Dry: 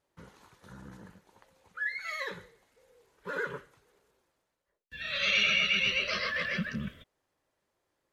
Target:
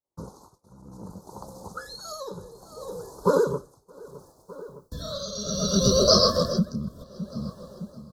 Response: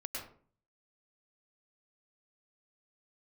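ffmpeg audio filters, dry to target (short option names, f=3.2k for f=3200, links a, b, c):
-filter_complex "[0:a]acrossover=split=540|2100[a][b][c];[b]alimiter=level_in=9.5dB:limit=-24dB:level=0:latency=1:release=439,volume=-9.5dB[d];[a][d][c]amix=inputs=3:normalize=0,asuperstop=centerf=2300:order=8:qfactor=0.66,asplit=2[e][f];[f]adelay=612,lowpass=f=3.8k:p=1,volume=-21dB,asplit=2[g][h];[h]adelay=612,lowpass=f=3.8k:p=1,volume=0.55,asplit=2[i][j];[j]adelay=612,lowpass=f=3.8k:p=1,volume=0.55,asplit=2[k][l];[l]adelay=612,lowpass=f=3.8k:p=1,volume=0.55[m];[e][g][i][k][m]amix=inputs=5:normalize=0,asplit=2[n][o];[o]acompressor=threshold=-42dB:ratio=6,volume=1dB[p];[n][p]amix=inputs=2:normalize=0,tremolo=f=0.66:d=0.86,dynaudnorm=f=420:g=7:m=11dB,agate=range=-33dB:threshold=-58dB:ratio=3:detection=peak,volume=8dB"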